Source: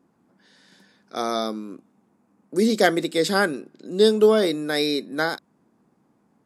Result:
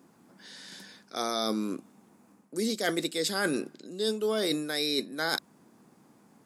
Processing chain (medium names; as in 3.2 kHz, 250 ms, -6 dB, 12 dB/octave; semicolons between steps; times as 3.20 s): high-pass 79 Hz; treble shelf 2.6 kHz +9.5 dB; reverse; compression 10:1, threshold -30 dBFS, peak gain reduction 20 dB; reverse; trim +4 dB